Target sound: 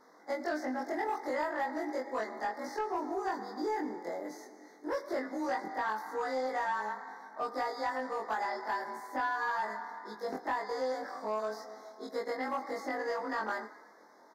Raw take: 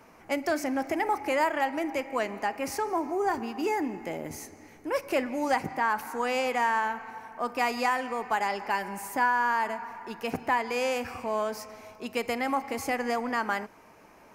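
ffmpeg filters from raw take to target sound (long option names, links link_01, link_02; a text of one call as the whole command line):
ffmpeg -i in.wav -filter_complex "[0:a]afftfilt=real='re':imag='-im':win_size=2048:overlap=0.75,asplit=2[link_01][link_02];[link_02]aeval=exprs='sgn(val(0))*max(abs(val(0))-0.00531,0)':channel_layout=same,volume=-11dB[link_03];[link_01][link_03]amix=inputs=2:normalize=0,asuperstop=centerf=2700:order=12:qfactor=1.9,acrossover=split=1500|3400[link_04][link_05][link_06];[link_04]acompressor=threshold=-30dB:ratio=4[link_07];[link_05]acompressor=threshold=-42dB:ratio=4[link_08];[link_06]acompressor=threshold=-54dB:ratio=4[link_09];[link_07][link_08][link_09]amix=inputs=3:normalize=0,highpass=frequency=250:width=0.5412,highpass=frequency=250:width=1.3066,highshelf=frequency=6800:width_type=q:width=1.5:gain=-6.5,asplit=6[link_10][link_11][link_12][link_13][link_14][link_15];[link_11]adelay=111,afreqshift=35,volume=-19dB[link_16];[link_12]adelay=222,afreqshift=70,volume=-23.3dB[link_17];[link_13]adelay=333,afreqshift=105,volume=-27.6dB[link_18];[link_14]adelay=444,afreqshift=140,volume=-31.9dB[link_19];[link_15]adelay=555,afreqshift=175,volume=-36.2dB[link_20];[link_10][link_16][link_17][link_18][link_19][link_20]amix=inputs=6:normalize=0,asoftclip=type=tanh:threshold=-23.5dB" out.wav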